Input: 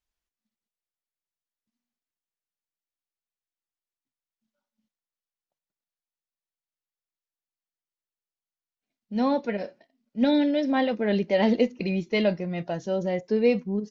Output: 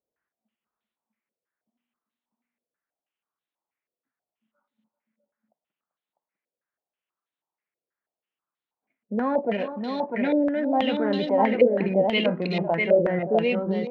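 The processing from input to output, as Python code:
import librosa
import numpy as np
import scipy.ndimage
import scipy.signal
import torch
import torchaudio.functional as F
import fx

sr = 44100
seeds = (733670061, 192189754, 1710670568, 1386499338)

p1 = fx.wiener(x, sr, points=9)
p2 = scipy.signal.sosfilt(scipy.signal.butter(2, 160.0, 'highpass', fs=sr, output='sos'), p1)
p3 = fx.over_compress(p2, sr, threshold_db=-31.0, ratio=-1.0)
p4 = p2 + (p3 * 10.0 ** (0.0 / 20.0))
p5 = fx.echo_multitap(p4, sr, ms=(391, 650), db=(-12.5, -3.5))
p6 = fx.filter_held_lowpass(p5, sr, hz=6.2, low_hz=520.0, high_hz=3900.0)
y = p6 * 10.0 ** (-5.0 / 20.0)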